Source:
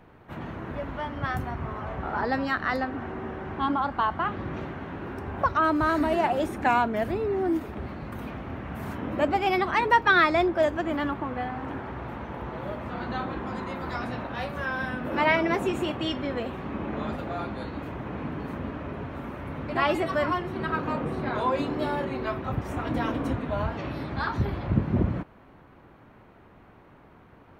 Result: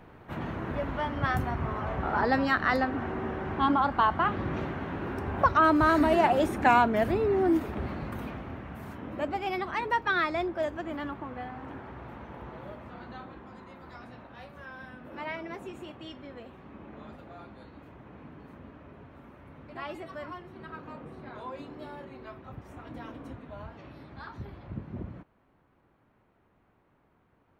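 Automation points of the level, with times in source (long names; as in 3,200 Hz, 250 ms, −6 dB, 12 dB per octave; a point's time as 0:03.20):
0:07.98 +1.5 dB
0:08.88 −7.5 dB
0:12.49 −7.5 dB
0:13.50 −14.5 dB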